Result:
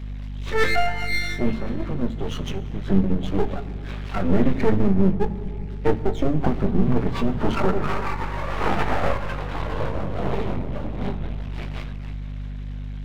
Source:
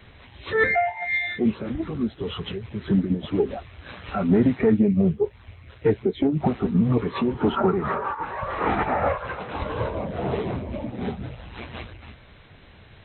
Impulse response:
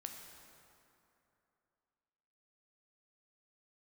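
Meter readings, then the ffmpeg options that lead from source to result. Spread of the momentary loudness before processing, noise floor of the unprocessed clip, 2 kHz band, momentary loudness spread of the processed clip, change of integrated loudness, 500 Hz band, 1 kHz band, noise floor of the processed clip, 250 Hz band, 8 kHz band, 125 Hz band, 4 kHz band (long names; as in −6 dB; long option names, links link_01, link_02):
15 LU, −50 dBFS, −1.0 dB, 12 LU, −1.0 dB, −1.0 dB, −0.5 dB, −31 dBFS, −1.0 dB, can't be measured, +2.5 dB, +3.0 dB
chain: -filter_complex "[0:a]aeval=exprs='max(val(0),0)':channel_layout=same,aeval=exprs='val(0)+0.0126*(sin(2*PI*50*n/s)+sin(2*PI*2*50*n/s)/2+sin(2*PI*3*50*n/s)/3+sin(2*PI*4*50*n/s)/4+sin(2*PI*5*50*n/s)/5)':channel_layout=same,asplit=2[link_01][link_02];[link_02]lowshelf=frequency=240:gain=11[link_03];[1:a]atrim=start_sample=2205,adelay=20[link_04];[link_03][link_04]afir=irnorm=-1:irlink=0,volume=-6.5dB[link_05];[link_01][link_05]amix=inputs=2:normalize=0,volume=3dB"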